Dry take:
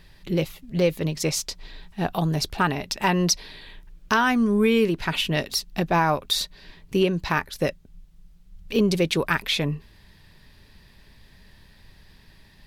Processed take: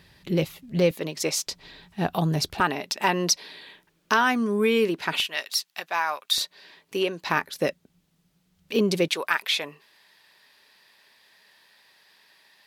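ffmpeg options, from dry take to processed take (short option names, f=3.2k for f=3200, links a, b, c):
-af "asetnsamples=n=441:p=0,asendcmd='0.91 highpass f 300;1.47 highpass f 90;2.6 highpass f 270;5.2 highpass f 1100;6.38 highpass f 430;7.27 highpass f 210;9.08 highpass f 640',highpass=82"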